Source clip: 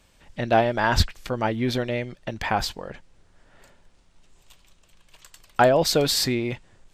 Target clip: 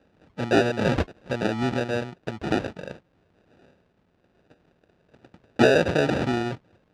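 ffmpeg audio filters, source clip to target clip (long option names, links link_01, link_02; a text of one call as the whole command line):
ffmpeg -i in.wav -af "acrusher=samples=41:mix=1:aa=0.000001,highpass=100,lowpass=3900" out.wav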